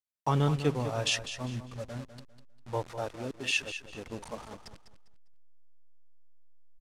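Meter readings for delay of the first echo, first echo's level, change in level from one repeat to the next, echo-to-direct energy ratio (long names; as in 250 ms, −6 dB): 200 ms, −11.0 dB, −11.0 dB, −10.5 dB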